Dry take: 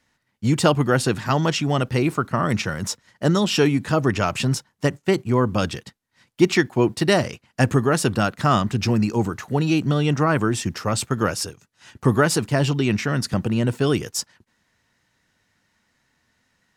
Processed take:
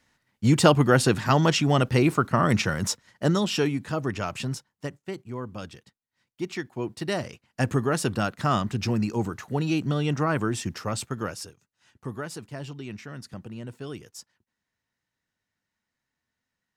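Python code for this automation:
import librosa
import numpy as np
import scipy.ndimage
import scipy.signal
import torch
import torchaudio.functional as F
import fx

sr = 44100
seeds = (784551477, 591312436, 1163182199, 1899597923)

y = fx.gain(x, sr, db=fx.line((2.87, 0.0), (3.86, -8.5), (4.44, -8.5), (5.12, -15.5), (6.41, -15.5), (7.79, -5.5), (10.78, -5.5), (12.08, -17.0)))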